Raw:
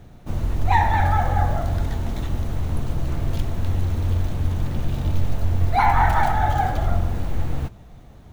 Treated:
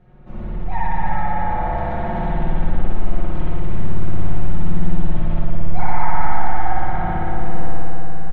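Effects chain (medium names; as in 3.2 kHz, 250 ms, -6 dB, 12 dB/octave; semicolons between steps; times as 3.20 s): comb 5.5 ms, depth 73%; on a send: two-band feedback delay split 760 Hz, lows 174 ms, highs 332 ms, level -8 dB; on the sum: level rider; spring tank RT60 3.3 s, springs 56 ms, chirp 65 ms, DRR -9 dB; in parallel at +2 dB: peak limiter -9.5 dBFS, peak gain reduction 23 dB; on the sum: low-pass 2.3 kHz 12 dB/octave; trim -16 dB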